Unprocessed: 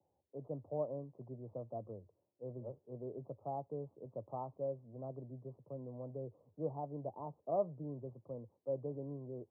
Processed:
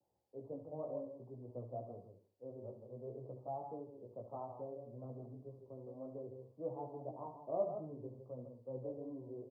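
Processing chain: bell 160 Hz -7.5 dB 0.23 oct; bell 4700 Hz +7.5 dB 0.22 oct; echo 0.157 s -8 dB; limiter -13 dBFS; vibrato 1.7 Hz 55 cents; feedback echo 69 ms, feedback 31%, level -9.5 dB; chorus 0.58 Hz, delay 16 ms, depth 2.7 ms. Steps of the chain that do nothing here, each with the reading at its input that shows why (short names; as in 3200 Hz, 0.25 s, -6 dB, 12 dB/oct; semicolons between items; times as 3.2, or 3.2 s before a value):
bell 4700 Hz: input band ends at 1100 Hz; limiter -13 dBFS: input peak -22.5 dBFS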